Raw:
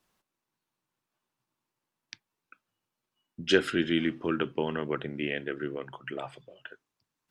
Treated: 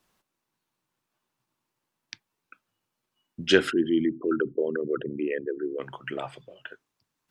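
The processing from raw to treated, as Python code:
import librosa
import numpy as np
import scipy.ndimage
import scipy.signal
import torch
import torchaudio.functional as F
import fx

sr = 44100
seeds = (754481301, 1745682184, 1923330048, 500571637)

y = fx.envelope_sharpen(x, sr, power=3.0, at=(3.7, 5.78), fade=0.02)
y = y * librosa.db_to_amplitude(3.5)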